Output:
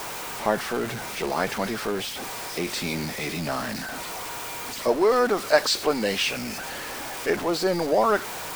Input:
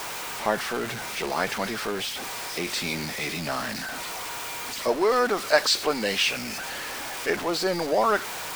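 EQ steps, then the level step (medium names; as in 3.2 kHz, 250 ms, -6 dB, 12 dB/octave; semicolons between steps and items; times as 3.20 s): tilt shelf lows +3.5 dB, about 1.1 kHz; treble shelf 6.2 kHz +4.5 dB; 0.0 dB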